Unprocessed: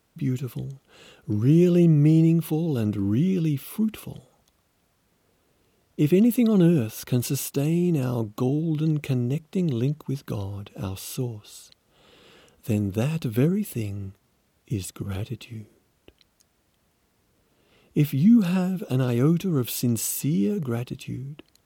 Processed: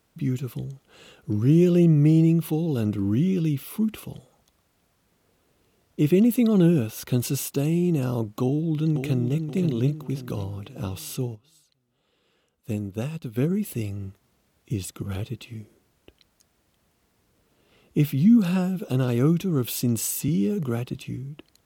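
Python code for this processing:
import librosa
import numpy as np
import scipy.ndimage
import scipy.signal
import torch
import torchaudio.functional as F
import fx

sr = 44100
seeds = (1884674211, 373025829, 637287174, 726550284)

y = fx.echo_throw(x, sr, start_s=8.42, length_s=1.04, ms=530, feedback_pct=45, wet_db=-8.0)
y = fx.upward_expand(y, sr, threshold_db=-43.0, expansion=1.5, at=(11.34, 13.49), fade=0.02)
y = fx.band_squash(y, sr, depth_pct=40, at=(20.28, 21.04))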